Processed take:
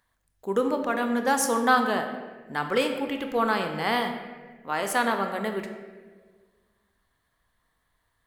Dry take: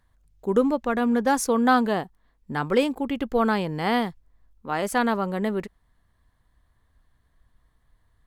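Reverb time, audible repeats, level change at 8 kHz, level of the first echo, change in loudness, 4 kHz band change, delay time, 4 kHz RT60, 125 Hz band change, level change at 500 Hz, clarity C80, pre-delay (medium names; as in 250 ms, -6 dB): 1.5 s, no echo, +2.5 dB, no echo, -2.0 dB, +2.0 dB, no echo, 0.95 s, -7.0 dB, -2.5 dB, 8.0 dB, 23 ms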